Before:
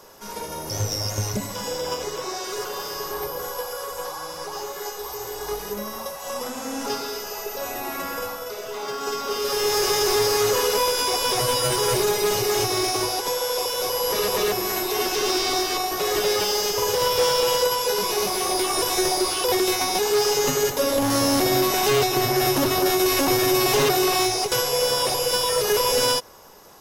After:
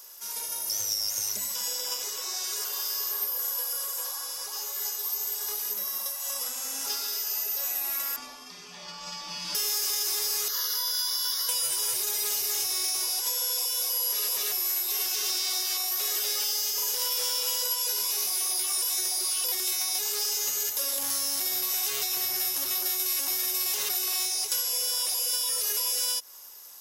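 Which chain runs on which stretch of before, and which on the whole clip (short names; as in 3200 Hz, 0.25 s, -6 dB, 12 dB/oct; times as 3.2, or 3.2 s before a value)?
8.16–9.55 frequency shift -240 Hz + air absorption 120 m
10.48–11.49 HPF 490 Hz 24 dB/oct + fixed phaser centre 2500 Hz, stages 6
whole clip: pre-emphasis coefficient 0.97; compressor, threshold -30 dBFS; de-hum 52.82 Hz, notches 5; gain +5 dB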